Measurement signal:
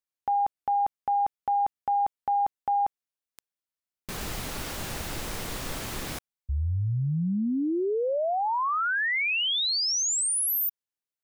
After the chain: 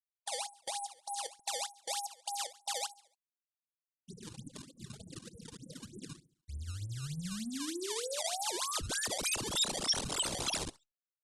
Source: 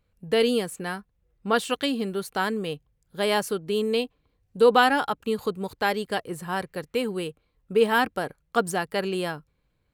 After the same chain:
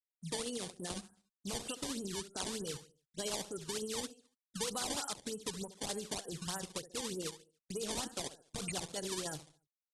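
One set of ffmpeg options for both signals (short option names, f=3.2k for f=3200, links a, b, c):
-filter_complex "[0:a]highpass=110,afftfilt=real='re*gte(hypot(re,im),0.0631)':imag='im*gte(hypot(re,im),0.0631)':win_size=1024:overlap=0.75,acompressor=threshold=-36dB:ratio=8:attack=2.1:release=41:knee=1:detection=peak,asplit=2[a][b];[b]adelay=70,lowpass=f=3.2k:p=1,volume=-13dB,asplit=2[c][d];[d]adelay=70,lowpass=f=3.2k:p=1,volume=0.38,asplit=2[e][f];[f]adelay=70,lowpass=f=3.2k:p=1,volume=0.38,asplit=2[g][h];[h]adelay=70,lowpass=f=3.2k:p=1,volume=0.38[i];[c][e][g][i]amix=inputs=4:normalize=0[j];[a][j]amix=inputs=2:normalize=0,acrusher=samples=19:mix=1:aa=0.000001:lfo=1:lforange=30.4:lforate=3.3,tremolo=f=14:d=0.39,aexciter=amount=4.9:drive=3.4:freq=3.1k,aresample=22050,aresample=44100,volume=-1.5dB" -ar 48000 -c:a libopus -b:a 24k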